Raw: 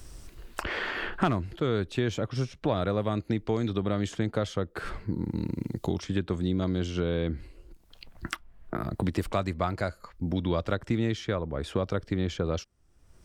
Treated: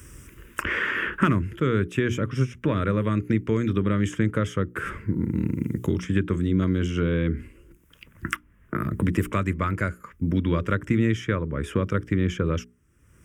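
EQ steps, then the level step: high-pass 71 Hz; hum notches 60/120/180/240/300/360/420 Hz; static phaser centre 1.8 kHz, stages 4; +8.0 dB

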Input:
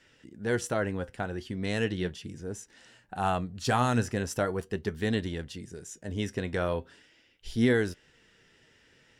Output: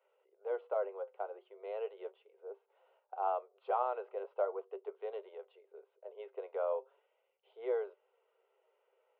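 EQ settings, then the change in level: Gaussian low-pass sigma 4.7 samples; rippled Chebyshev high-pass 380 Hz, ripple 3 dB; static phaser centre 720 Hz, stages 4; 0.0 dB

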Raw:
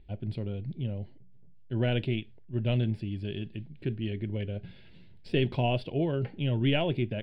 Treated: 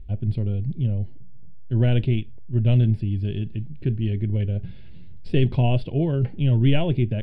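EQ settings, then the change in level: bass shelf 110 Hz +11.5 dB; bass shelf 340 Hz +6 dB; 0.0 dB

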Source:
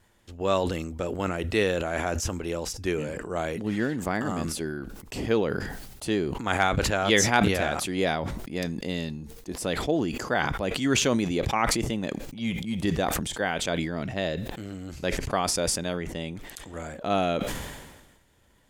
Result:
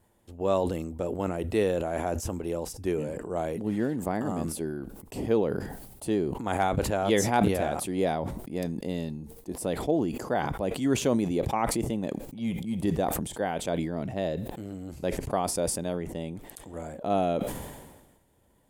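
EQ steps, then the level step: bass shelf 63 Hz -7.5 dB; high-order bell 2.9 kHz -9.5 dB 2.8 oct; 0.0 dB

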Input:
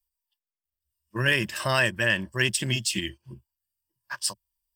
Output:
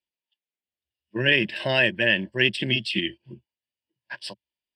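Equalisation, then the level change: band-pass 200–3700 Hz; static phaser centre 2.9 kHz, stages 4; +6.5 dB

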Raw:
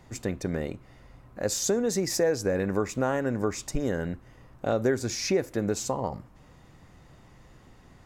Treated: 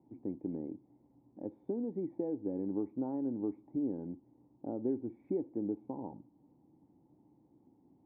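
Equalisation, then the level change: cascade formant filter u; high-pass 130 Hz 12 dB/octave; 0.0 dB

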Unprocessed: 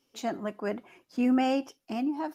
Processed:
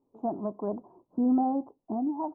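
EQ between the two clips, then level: elliptic low-pass 1 kHz, stop band 50 dB; band-stop 530 Hz, Q 12; dynamic bell 370 Hz, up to -4 dB, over -35 dBFS, Q 1; +3.0 dB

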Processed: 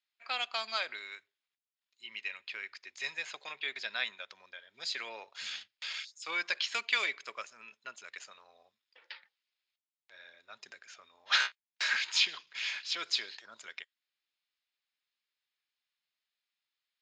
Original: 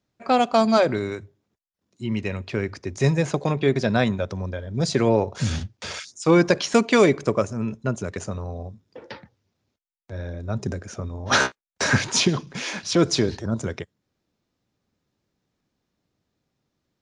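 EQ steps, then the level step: Butterworth band-pass 4.8 kHz, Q 0.68; distance through air 160 m; band-stop 5.8 kHz, Q 6.2; +1.5 dB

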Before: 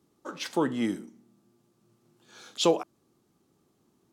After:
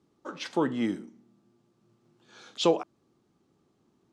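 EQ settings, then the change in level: distance through air 73 m; 0.0 dB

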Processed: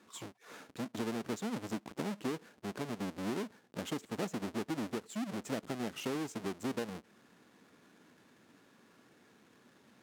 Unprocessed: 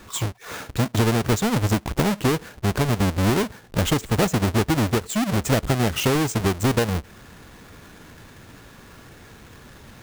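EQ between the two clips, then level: band-pass filter 230 Hz, Q 1.5; differentiator; +15.5 dB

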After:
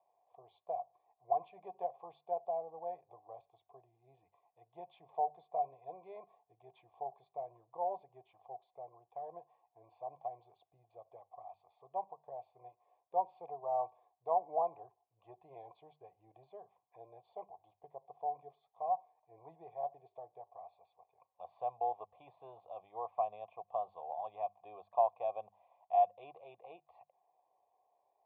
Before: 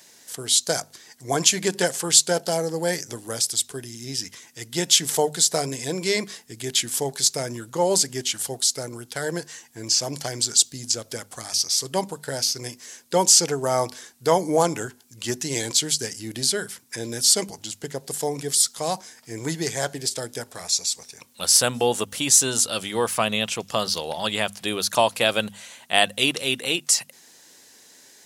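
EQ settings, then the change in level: cascade formant filter a; static phaser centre 590 Hz, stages 4; -1.0 dB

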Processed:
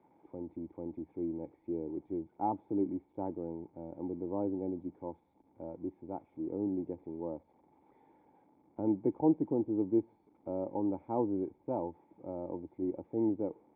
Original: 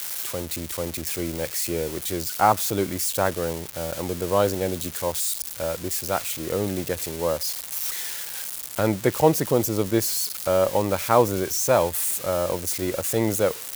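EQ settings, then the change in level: cascade formant filter u; high-pass 120 Hz 6 dB/octave; 0.0 dB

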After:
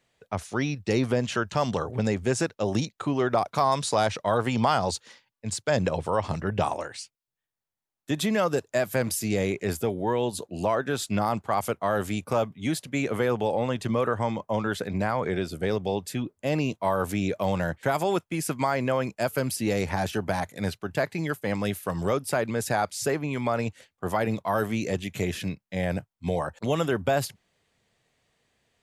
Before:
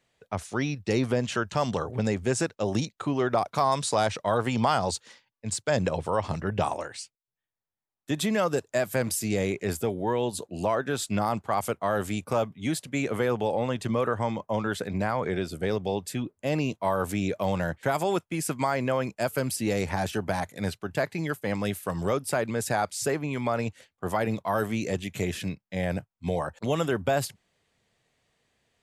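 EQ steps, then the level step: dynamic bell 8.1 kHz, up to -4 dB, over -54 dBFS, Q 4.1; +1.0 dB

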